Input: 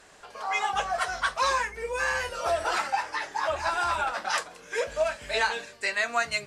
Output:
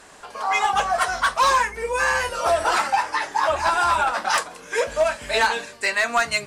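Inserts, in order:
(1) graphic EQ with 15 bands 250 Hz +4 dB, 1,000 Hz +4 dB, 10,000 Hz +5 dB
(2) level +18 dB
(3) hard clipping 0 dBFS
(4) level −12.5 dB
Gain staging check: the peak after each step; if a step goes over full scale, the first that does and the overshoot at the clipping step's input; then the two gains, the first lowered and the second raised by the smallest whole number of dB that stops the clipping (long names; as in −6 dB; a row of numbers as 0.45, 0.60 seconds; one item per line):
−11.0, +7.0, 0.0, −12.5 dBFS
step 2, 7.0 dB
step 2 +11 dB, step 4 −5.5 dB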